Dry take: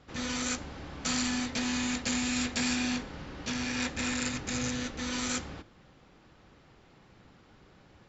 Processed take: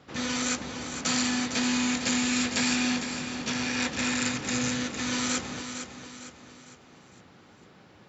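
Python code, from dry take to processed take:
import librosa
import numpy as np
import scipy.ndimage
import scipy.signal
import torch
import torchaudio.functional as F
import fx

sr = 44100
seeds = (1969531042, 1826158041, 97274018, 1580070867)

y = scipy.signal.sosfilt(scipy.signal.butter(2, 110.0, 'highpass', fs=sr, output='sos'), x)
y = fx.echo_feedback(y, sr, ms=456, feedback_pct=43, wet_db=-8.5)
y = y * librosa.db_to_amplitude(4.0)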